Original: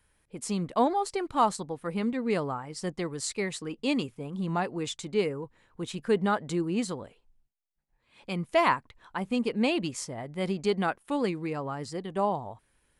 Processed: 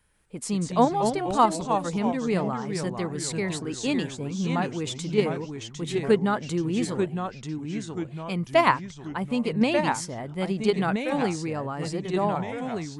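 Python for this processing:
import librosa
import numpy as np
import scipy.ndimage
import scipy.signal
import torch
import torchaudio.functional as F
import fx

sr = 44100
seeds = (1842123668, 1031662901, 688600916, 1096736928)

p1 = fx.peak_eq(x, sr, hz=180.0, db=3.0, octaves=0.77)
p2 = fx.level_steps(p1, sr, step_db=22)
p3 = p1 + (p2 * 10.0 ** (-2.0 / 20.0))
y = fx.echo_pitch(p3, sr, ms=143, semitones=-2, count=3, db_per_echo=-6.0)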